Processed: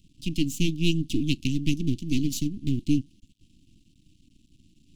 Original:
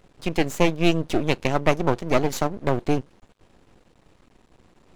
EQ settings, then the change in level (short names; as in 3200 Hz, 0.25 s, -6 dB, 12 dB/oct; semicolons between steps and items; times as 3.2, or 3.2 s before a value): Chebyshev band-stop 300–2800 Hz, order 4; dynamic EQ 280 Hz, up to +3 dB, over -37 dBFS, Q 2.7; 0.0 dB